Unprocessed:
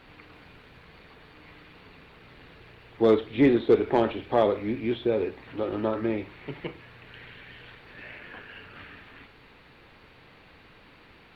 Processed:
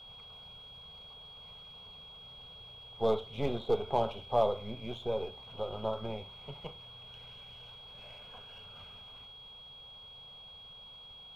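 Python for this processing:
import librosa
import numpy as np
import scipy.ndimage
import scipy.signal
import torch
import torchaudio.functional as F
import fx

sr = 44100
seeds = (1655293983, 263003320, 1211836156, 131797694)

y = np.where(x < 0.0, 10.0 ** (-3.0 / 20.0) * x, x)
y = y + 10.0 ** (-43.0 / 20.0) * np.sin(2.0 * np.pi * 3300.0 * np.arange(len(y)) / sr)
y = fx.fixed_phaser(y, sr, hz=750.0, stages=4)
y = F.gain(torch.from_numpy(y), -2.0).numpy()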